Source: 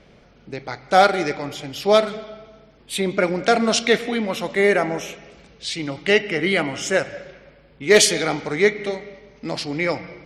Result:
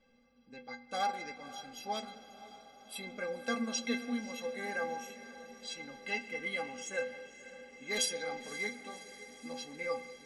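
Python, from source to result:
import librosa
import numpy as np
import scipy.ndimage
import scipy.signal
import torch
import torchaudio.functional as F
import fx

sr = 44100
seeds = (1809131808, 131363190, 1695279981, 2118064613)

y = fx.stiff_resonator(x, sr, f0_hz=240.0, decay_s=0.34, stiffness=0.03)
y = fx.echo_diffused(y, sr, ms=543, feedback_pct=67, wet_db=-15)
y = F.gain(torch.from_numpy(y), -1.5).numpy()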